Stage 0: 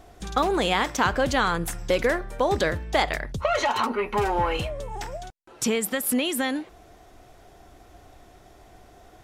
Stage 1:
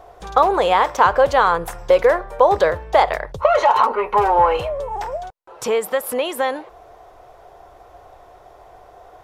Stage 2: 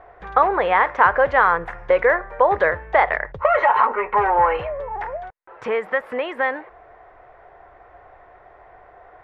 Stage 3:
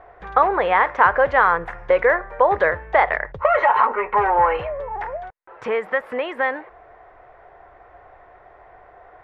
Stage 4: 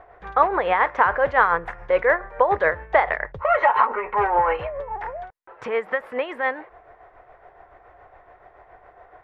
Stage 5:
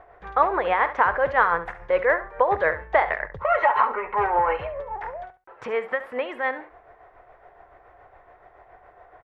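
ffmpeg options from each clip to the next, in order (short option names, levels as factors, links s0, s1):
-af "equalizer=f=250:t=o:w=1:g=-10,equalizer=f=500:t=o:w=1:g=11,equalizer=f=1000:t=o:w=1:g=11,equalizer=f=8000:t=o:w=1:g=-4,volume=0.891"
-af "lowpass=f=1900:t=q:w=3.3,volume=0.631"
-af anull
-af "tremolo=f=7.1:d=0.5"
-af "aecho=1:1:69|138:0.211|0.0317,volume=0.794"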